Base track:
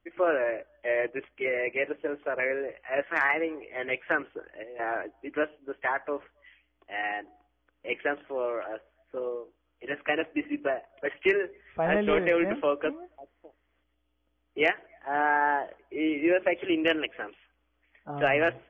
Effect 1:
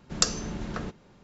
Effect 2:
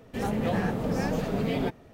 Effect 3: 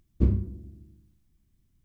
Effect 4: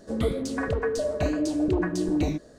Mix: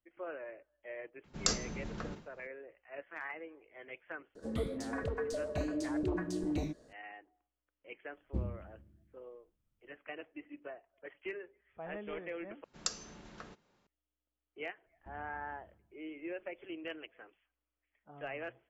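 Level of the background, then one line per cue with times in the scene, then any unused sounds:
base track -18 dB
1.24 add 1 -8 dB + sustainer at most 140 dB/s
4.35 add 4 -10 dB
8.13 add 3 -14 dB
12.64 replace with 1 -12 dB + low shelf 340 Hz -10.5 dB
14.86 add 3 -15.5 dB + compressor, threshold -37 dBFS
not used: 2

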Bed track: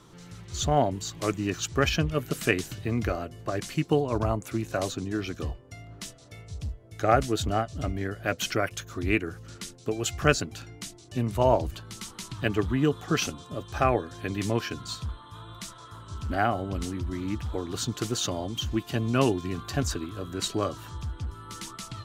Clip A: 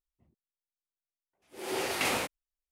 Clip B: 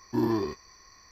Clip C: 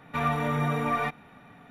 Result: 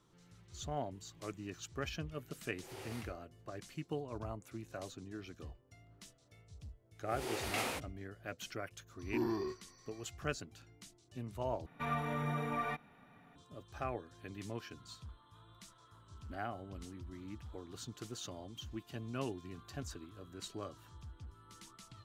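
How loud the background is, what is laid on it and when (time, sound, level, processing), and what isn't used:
bed track -16.5 dB
1.01 add A -17 dB + ending taper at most 210 dB/s
5.53 add A -8 dB
8.99 add B -1.5 dB + resonator 370 Hz, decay 0.16 s, mix 70%
11.66 replace with C -10 dB

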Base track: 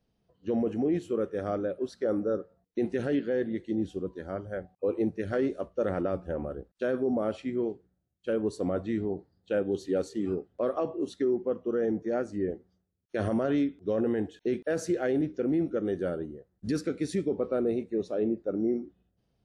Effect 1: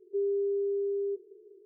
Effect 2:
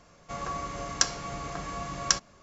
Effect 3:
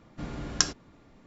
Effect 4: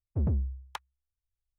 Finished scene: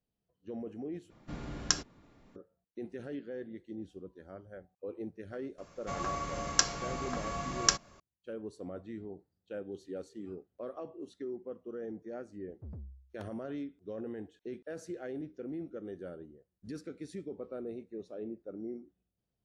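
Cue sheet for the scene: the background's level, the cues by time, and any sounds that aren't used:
base track -13 dB
1.1 replace with 3 -4.5 dB
5.58 add 2 -1.5 dB
12.46 add 4 -17.5 dB
not used: 1

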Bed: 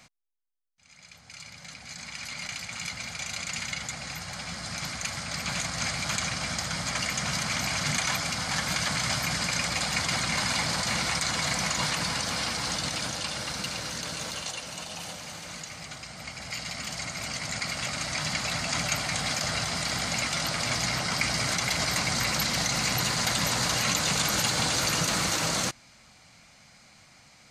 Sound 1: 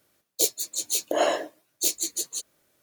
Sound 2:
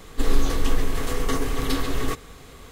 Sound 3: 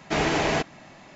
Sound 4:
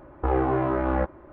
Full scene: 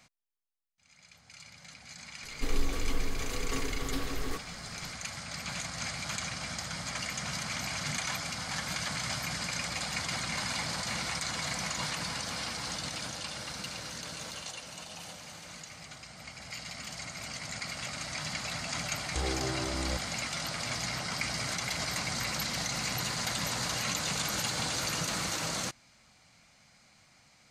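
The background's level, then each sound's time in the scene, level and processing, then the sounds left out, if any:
bed -6.5 dB
2.23 add 2 -10 dB
18.92 add 4 -15 dB + tilt -2 dB/oct
not used: 1, 3

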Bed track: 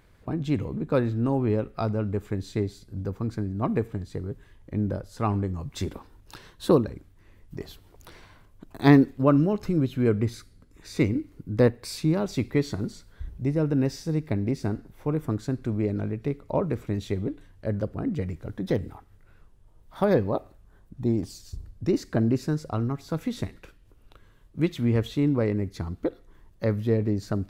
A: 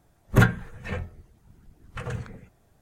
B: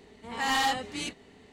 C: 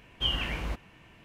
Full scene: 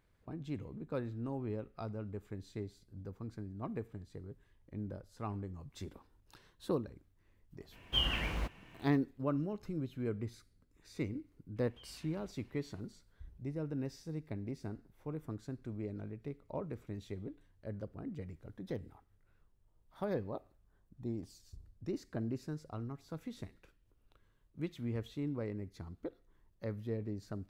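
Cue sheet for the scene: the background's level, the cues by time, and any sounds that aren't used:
bed track -15 dB
7.72 add C -3 dB + block floating point 7-bit
11.56 add C -14 dB + compressor 5:1, threshold -43 dBFS
not used: A, B

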